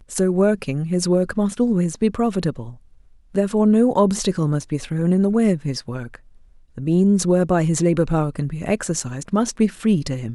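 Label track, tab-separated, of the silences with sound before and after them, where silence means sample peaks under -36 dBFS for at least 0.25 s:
2.750000	3.350000	silence
6.160000	6.780000	silence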